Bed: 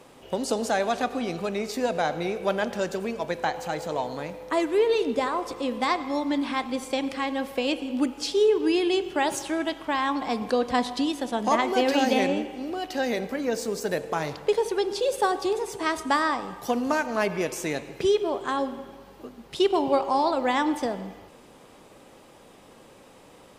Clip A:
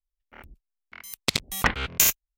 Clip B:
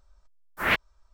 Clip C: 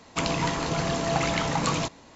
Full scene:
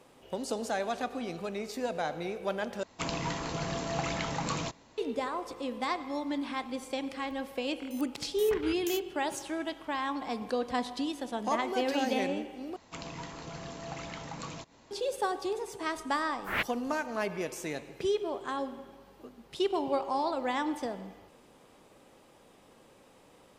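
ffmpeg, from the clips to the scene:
-filter_complex "[3:a]asplit=2[a][b];[0:a]volume=-7.5dB[c];[1:a]acompressor=threshold=-25dB:ratio=5:attack=1.5:release=33:knee=6:detection=rms[d];[b]acompressor=mode=upward:threshold=-33dB:ratio=2.5:attack=3.2:release=140:knee=2.83:detection=peak[e];[c]asplit=3[f][g][h];[f]atrim=end=2.834[i];[a]atrim=end=2.15,asetpts=PTS-STARTPTS,volume=-7.5dB[j];[g]atrim=start=4.976:end=12.764[k];[e]atrim=end=2.15,asetpts=PTS-STARTPTS,volume=-15.5dB[l];[h]atrim=start=14.906[m];[d]atrim=end=2.37,asetpts=PTS-STARTPTS,volume=-10dB,afade=t=in:d=0.004:c=hsin,afade=t=out:st=2.366:d=0.004:c=hsin,adelay=6870[n];[2:a]atrim=end=1.13,asetpts=PTS-STARTPTS,volume=-7.5dB,afade=t=in:d=0.004:c=hsin,afade=t=out:st=1.126:d=0.004:c=hsin,adelay=15870[o];[i][j]acrossfade=d=0.004:c1=hsin:c2=hsin[p];[p][k]acrossfade=d=0.004:c1=hsin:c2=hsin[q];[q][l]acrossfade=d=0.004:c1=hsin:c2=hsin[r];[r][m]acrossfade=d=0.004:c1=hsin:c2=hsin[s];[s][n][o]amix=inputs=3:normalize=0"

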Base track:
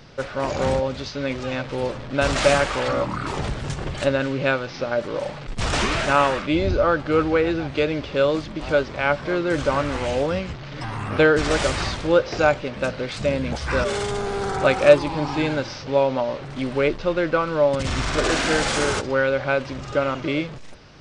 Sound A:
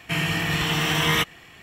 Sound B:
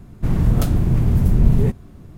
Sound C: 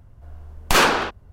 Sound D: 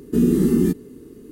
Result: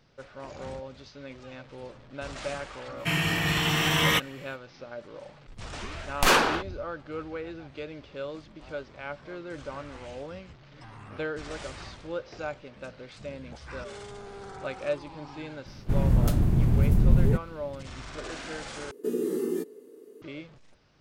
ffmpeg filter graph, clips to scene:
-filter_complex "[0:a]volume=-17dB[a];[4:a]highpass=f=470:t=q:w=2.7[b];[a]asplit=2[c][d];[c]atrim=end=18.914[e];[b]atrim=end=1.31,asetpts=PTS-STARTPTS,volume=-9dB[f];[d]atrim=start=20.216[g];[1:a]atrim=end=1.62,asetpts=PTS-STARTPTS,volume=-2dB,afade=t=in:d=0.05,afade=t=out:st=1.57:d=0.05,adelay=2960[h];[3:a]atrim=end=1.32,asetpts=PTS-STARTPTS,volume=-4.5dB,afade=t=in:d=0.004:c=hsin,afade=t=out:st=1.316:d=0.004:c=hsin,adelay=5520[i];[2:a]atrim=end=2.17,asetpts=PTS-STARTPTS,volume=-5.5dB,afade=t=in:d=0.004:c=hsin,afade=t=out:st=2.166:d=0.004:c=hsin,adelay=15660[j];[e][f]acrossfade=d=0.004:c1=hsin:c2=hsin[k];[k][g]acrossfade=d=0.004:c1=hsin:c2=hsin[l];[l][h][i][j]amix=inputs=4:normalize=0"

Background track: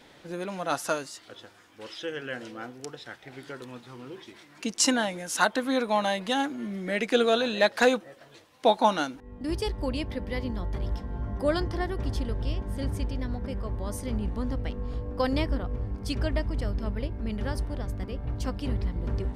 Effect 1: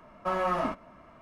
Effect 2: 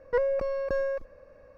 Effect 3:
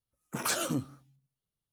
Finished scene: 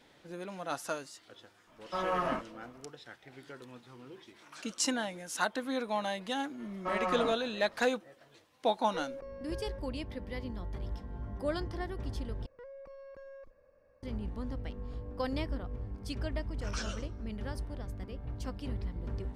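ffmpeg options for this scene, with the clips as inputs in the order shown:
-filter_complex "[1:a]asplit=2[a][b];[3:a]asplit=2[c][d];[2:a]asplit=2[e][f];[0:a]volume=-8dB[g];[a]dynaudnorm=f=110:g=5:m=6.5dB[h];[c]highpass=750,lowpass=5.3k[i];[b]aresample=16000,aresample=44100[j];[f]acompressor=threshold=-35dB:ratio=5:attack=0.68:release=22:knee=1:detection=peak[k];[d]highpass=450,equalizer=f=490:t=q:w=4:g=7,equalizer=f=1.5k:t=q:w=4:g=5,equalizer=f=2.8k:t=q:w=4:g=5,equalizer=f=5.4k:t=q:w=4:g=9,lowpass=f=6.7k:w=0.5412,lowpass=f=6.7k:w=1.3066[l];[g]asplit=2[m][n];[m]atrim=end=12.464[o];[k]atrim=end=1.57,asetpts=PTS-STARTPTS,volume=-12.5dB[p];[n]atrim=start=14.026[q];[h]atrim=end=1.21,asetpts=PTS-STARTPTS,volume=-10dB,afade=t=in:d=0.004:c=hsin,afade=t=out:st=1.206:d=0.004:c=hsin,adelay=1670[r];[i]atrim=end=1.72,asetpts=PTS-STARTPTS,volume=-17.5dB,afade=t=in:d=0.004:c=hsin,afade=t=out:st=1.716:d=0.004:c=hsin,adelay=4070[s];[j]atrim=end=1.21,asetpts=PTS-STARTPTS,volume=-5dB,afade=t=in:d=0.004:c=hsin,afade=t=out:st=1.206:d=0.004:c=hsin,adelay=6600[t];[e]atrim=end=1.57,asetpts=PTS-STARTPTS,volume=-16dB,afade=t=in:d=0.004:c=hsin,afade=t=out:st=1.566:d=0.004:c=hsin,adelay=8810[u];[l]atrim=end=1.72,asetpts=PTS-STARTPTS,volume=-11.5dB,afade=t=in:d=0.004:c=hsin,afade=t=out:st=1.716:d=0.004:c=hsin,adelay=16280[v];[o][p]acrossfade=d=0.004:c1=hsin:c2=hsin[w];[w][q]acrossfade=d=0.004:c1=hsin:c2=hsin[x];[x][r][s][t][u][v]amix=inputs=6:normalize=0"

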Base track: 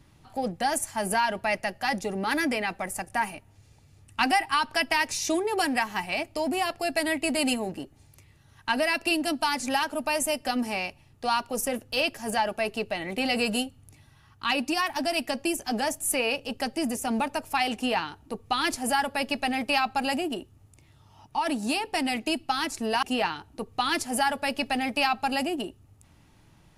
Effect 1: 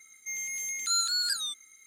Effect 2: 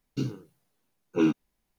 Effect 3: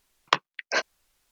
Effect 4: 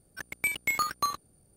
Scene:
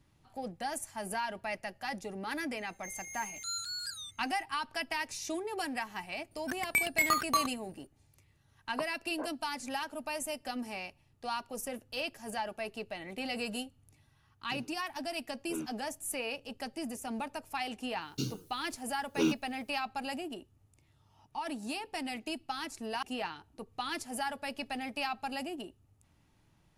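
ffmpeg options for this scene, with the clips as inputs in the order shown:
-filter_complex "[2:a]asplit=2[a][b];[0:a]volume=-10.5dB[c];[3:a]lowpass=f=1k:w=0.5412,lowpass=f=1k:w=1.3066[d];[b]aexciter=amount=2.3:drive=9.2:freq=2.9k[e];[1:a]atrim=end=1.86,asetpts=PTS-STARTPTS,volume=-10.5dB,afade=t=in:d=0.004:c=hsin,afade=t=out:st=1.856:d=0.004:c=hsin,adelay=2570[f];[4:a]atrim=end=1.56,asetpts=PTS-STARTPTS,afade=t=in:d=0.004:c=hsin,afade=t=out:st=1.556:d=0.004:c=hsin,adelay=6310[g];[d]atrim=end=1.31,asetpts=PTS-STARTPTS,volume=-10.5dB,afade=t=in:d=0.004:c=hsin,afade=t=out:st=1.306:d=0.004:c=hsin,adelay=8460[h];[a]atrim=end=1.78,asetpts=PTS-STARTPTS,volume=-16.5dB,afade=t=in:d=0.004:c=hsin,afade=t=out:st=1.776:d=0.004:c=hsin,adelay=14340[i];[e]atrim=end=1.78,asetpts=PTS-STARTPTS,volume=-6dB,afade=t=in:d=0.004:c=hsin,afade=t=out:st=1.776:d=0.004:c=hsin,adelay=18010[j];[c][f][g][h][i][j]amix=inputs=6:normalize=0"

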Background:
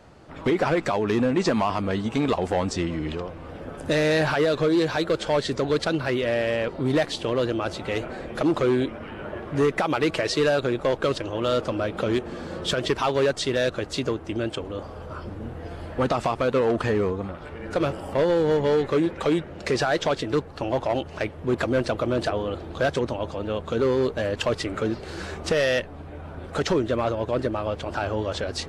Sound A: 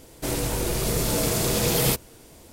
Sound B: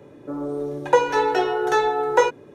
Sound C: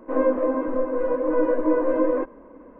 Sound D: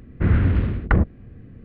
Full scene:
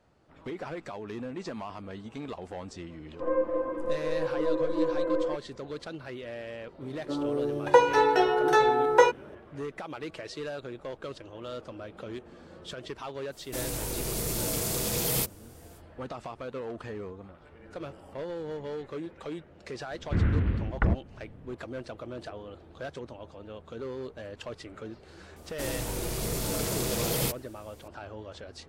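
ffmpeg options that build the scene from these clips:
-filter_complex "[1:a]asplit=2[a][b];[0:a]volume=-15.5dB[c];[3:a]aecho=1:1:5.8:0.94[d];[2:a]bandreject=f=6.8k:w=8.4[e];[a]highshelf=f=6.2k:g=6[f];[d]atrim=end=2.79,asetpts=PTS-STARTPTS,volume=-11.5dB,afade=t=in:d=0.004:c=hsin,afade=t=out:st=2.786:d=0.004:c=hsin,adelay=3110[g];[e]atrim=end=2.54,asetpts=PTS-STARTPTS,volume=-2dB,afade=t=in:d=0.004:c=hsin,afade=t=out:st=2.536:d=0.004:c=hsin,adelay=6810[h];[f]atrim=end=2.52,asetpts=PTS-STARTPTS,volume=-8.5dB,afade=t=in:d=0.05,afade=t=out:st=2.47:d=0.05,adelay=13300[i];[4:a]atrim=end=1.64,asetpts=PTS-STARTPTS,volume=-7.5dB,afade=t=in:d=0.004:c=hsin,afade=t=out:st=1.636:d=0.004:c=hsin,adelay=19910[j];[b]atrim=end=2.52,asetpts=PTS-STARTPTS,volume=-7dB,afade=t=in:d=0.004:c=hsin,afade=t=out:st=2.516:d=0.004:c=hsin,adelay=1118376S[k];[c][g][h][i][j][k]amix=inputs=6:normalize=0"

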